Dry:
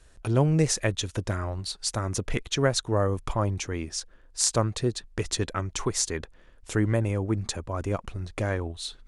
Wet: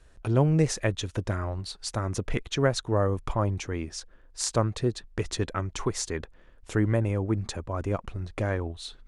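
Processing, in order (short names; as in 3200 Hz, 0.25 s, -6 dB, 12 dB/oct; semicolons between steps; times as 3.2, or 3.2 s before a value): high shelf 4000 Hz -8 dB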